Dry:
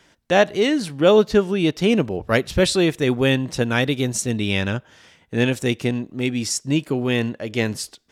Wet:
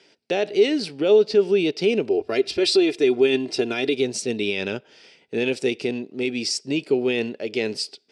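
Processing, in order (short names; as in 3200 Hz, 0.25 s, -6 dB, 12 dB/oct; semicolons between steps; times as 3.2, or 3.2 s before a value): 2.09–3.94 comb 2.9 ms, depth 69%; limiter -13 dBFS, peak gain reduction 9 dB; speaker cabinet 230–8600 Hz, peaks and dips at 410 Hz +10 dB, 1100 Hz -10 dB, 1700 Hz -5 dB, 2500 Hz +6 dB, 4800 Hz +10 dB, 6800 Hz -7 dB; gain -2 dB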